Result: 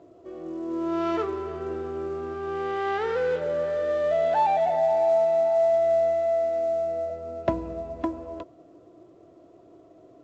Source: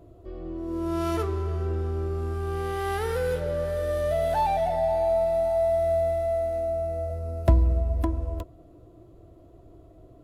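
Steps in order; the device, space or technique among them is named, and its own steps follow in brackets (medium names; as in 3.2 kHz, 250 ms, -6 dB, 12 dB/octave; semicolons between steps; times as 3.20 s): telephone (band-pass 250–3200 Hz; trim +2.5 dB; µ-law 128 kbps 16 kHz)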